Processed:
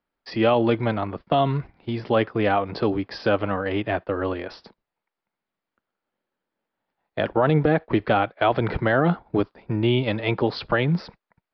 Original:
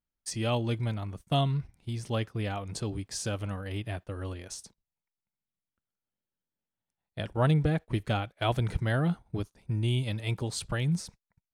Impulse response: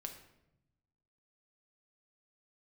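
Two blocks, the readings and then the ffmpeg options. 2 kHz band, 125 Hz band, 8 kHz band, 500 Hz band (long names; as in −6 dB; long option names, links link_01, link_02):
+11.0 dB, +2.0 dB, below −20 dB, +13.0 dB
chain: -filter_complex "[0:a]acrossover=split=250 2100:gain=0.158 1 0.224[link_01][link_02][link_03];[link_01][link_02][link_03]amix=inputs=3:normalize=0,aresample=11025,aresample=44100,alimiter=level_in=24.5dB:limit=-1dB:release=50:level=0:latency=1,volume=-8dB"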